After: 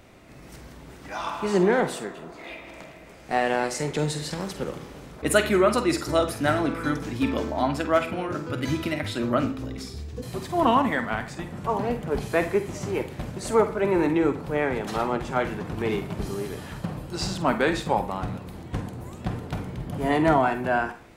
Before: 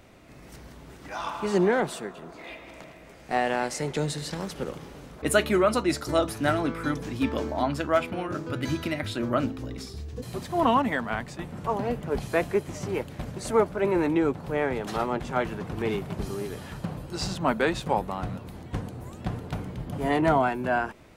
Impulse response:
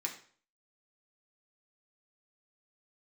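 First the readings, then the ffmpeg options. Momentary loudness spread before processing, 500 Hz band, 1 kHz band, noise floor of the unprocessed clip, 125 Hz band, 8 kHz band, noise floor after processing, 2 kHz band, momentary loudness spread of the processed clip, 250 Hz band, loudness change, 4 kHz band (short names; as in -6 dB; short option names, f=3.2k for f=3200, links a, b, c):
15 LU, +2.0 dB, +2.0 dB, -48 dBFS, +1.5 dB, +2.0 dB, -46 dBFS, +2.0 dB, 15 LU, +2.0 dB, +2.0 dB, +2.0 dB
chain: -filter_complex "[0:a]asplit=2[a][b];[1:a]atrim=start_sample=2205,adelay=47[c];[b][c]afir=irnorm=-1:irlink=0,volume=-9.5dB[d];[a][d]amix=inputs=2:normalize=0,volume=1.5dB"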